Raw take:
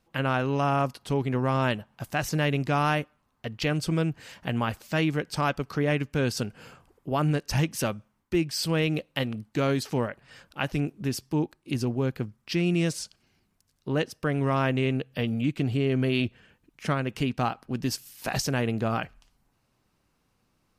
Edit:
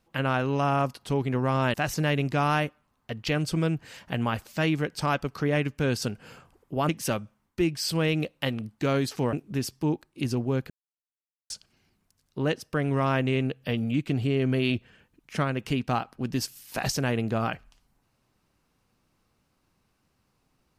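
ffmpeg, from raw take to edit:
ffmpeg -i in.wav -filter_complex "[0:a]asplit=6[link_01][link_02][link_03][link_04][link_05][link_06];[link_01]atrim=end=1.742[link_07];[link_02]atrim=start=2.088:end=7.242[link_08];[link_03]atrim=start=7.628:end=10.072[link_09];[link_04]atrim=start=10.828:end=12.2,asetpts=PTS-STARTPTS,afade=type=out:start_time=1.368:duration=0.004:curve=hsin[link_10];[link_05]atrim=start=12.2:end=13,asetpts=PTS-STARTPTS,volume=0[link_11];[link_06]atrim=start=13,asetpts=PTS-STARTPTS,afade=type=in:duration=0.004:curve=hsin[link_12];[link_07][link_08]acrossfade=duration=0.004:curve1=hsin:curve2=hsin[link_13];[link_13][link_09]acrossfade=duration=0.004:curve1=hsin:curve2=hsin[link_14];[link_10][link_11][link_12]concat=n=3:v=0:a=1[link_15];[link_14][link_15]acrossfade=duration=0.004:curve1=hsin:curve2=hsin" out.wav

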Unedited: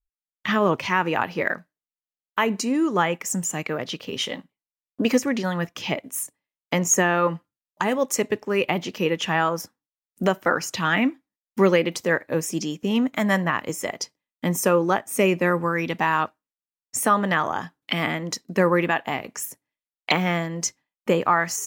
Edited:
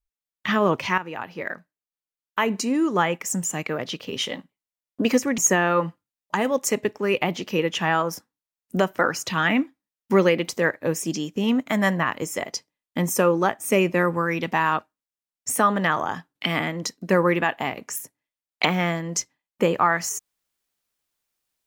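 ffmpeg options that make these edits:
ffmpeg -i in.wav -filter_complex "[0:a]asplit=3[link_01][link_02][link_03];[link_01]atrim=end=0.98,asetpts=PTS-STARTPTS,afade=type=out:start_time=0.976:duration=0.004:curve=hsin:silence=0.251189[link_04];[link_02]atrim=start=0.98:end=5.382,asetpts=PTS-STARTPTS,afade=type=in:duration=1.62:silence=0.251189[link_05];[link_03]atrim=start=6.848[link_06];[link_04][link_05]concat=n=2:v=0:a=1[link_07];[link_07][link_06]acrossfade=duration=0.004:curve1=hsin:curve2=hsin" out.wav

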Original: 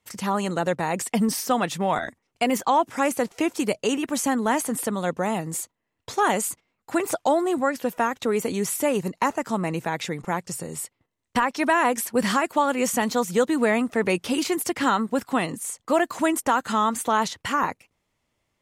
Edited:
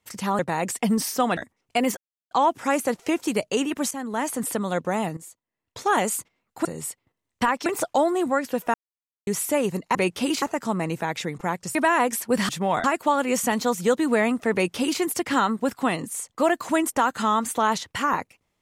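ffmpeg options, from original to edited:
ffmpeg -i in.wav -filter_complex "[0:a]asplit=15[link_01][link_02][link_03][link_04][link_05][link_06][link_07][link_08][link_09][link_10][link_11][link_12][link_13][link_14][link_15];[link_01]atrim=end=0.392[link_16];[link_02]atrim=start=0.698:end=1.682[link_17];[link_03]atrim=start=2.028:end=2.63,asetpts=PTS-STARTPTS,afade=type=out:start_time=0.598:duration=0.004:curve=hsin,apad=pad_dur=0.34[link_18];[link_04]atrim=start=2.63:end=4.23,asetpts=PTS-STARTPTS,afade=type=in:duration=0.004:curve=hsin,afade=type=out:start_time=1.596:duration=0.004:curve=hsin:silence=0.237137[link_19];[link_05]atrim=start=4.23:end=5.49,asetpts=PTS-STARTPTS,afade=type=in:duration=0.56:silence=0.237137,afade=type=out:start_time=1.256:duration=0.004:curve=hsin:silence=0.199526[link_20];[link_06]atrim=start=5.49:end=6.972,asetpts=PTS-STARTPTS,afade=type=in:duration=0.74:curve=qua:silence=0.199526[link_21];[link_07]atrim=start=10.588:end=11.602[link_22];[link_08]atrim=start=6.968:end=8.05,asetpts=PTS-STARTPTS,afade=type=out:start_time=1.078:duration=0.004:curve=hsin[link_23];[link_09]atrim=start=8.05:end=8.58,asetpts=PTS-STARTPTS,volume=0[link_24];[link_10]atrim=start=8.58:end=9.262,asetpts=PTS-STARTPTS,afade=type=in:duration=0.004:curve=hsin[link_25];[link_11]atrim=start=14.028:end=14.502[link_26];[link_12]atrim=start=9.258:end=10.592[link_27];[link_13]atrim=start=11.598:end=12.342[link_28];[link_14]atrim=start=1.678:end=2.032[link_29];[link_15]atrim=start=12.338[link_30];[link_16][link_17]acrossfade=duration=0.004:curve1=hsin:curve2=hsin[link_31];[link_18][link_19][link_20][link_21]concat=n=4:v=0:a=1[link_32];[link_31][link_32]acrossfade=duration=0.004:curve1=hsin:curve2=hsin[link_33];[link_33][link_22]acrossfade=duration=0.004:curve1=hsin:curve2=hsin[link_34];[link_23][link_24][link_25]concat=n=3:v=0:a=1[link_35];[link_34][link_35]acrossfade=duration=0.004:curve1=hsin:curve2=hsin[link_36];[link_36][link_26]acrossfade=duration=0.004:curve1=hsin:curve2=hsin[link_37];[link_37][link_27]acrossfade=duration=0.004:curve1=hsin:curve2=hsin[link_38];[link_38][link_28]acrossfade=duration=0.004:curve1=hsin:curve2=hsin[link_39];[link_39][link_29]acrossfade=duration=0.004:curve1=hsin:curve2=hsin[link_40];[link_40][link_30]acrossfade=duration=0.004:curve1=hsin:curve2=hsin" out.wav

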